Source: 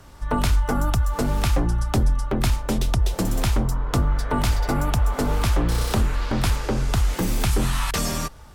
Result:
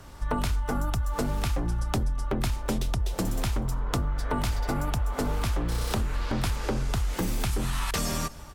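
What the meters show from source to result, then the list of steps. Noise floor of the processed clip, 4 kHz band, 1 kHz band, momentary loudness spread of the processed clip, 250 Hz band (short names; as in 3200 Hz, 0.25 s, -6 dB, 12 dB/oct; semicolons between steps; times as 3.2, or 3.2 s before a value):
-42 dBFS, -5.5 dB, -5.5 dB, 1 LU, -6.0 dB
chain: echo 0.244 s -23 dB; compressor, threshold -24 dBFS, peak gain reduction 9 dB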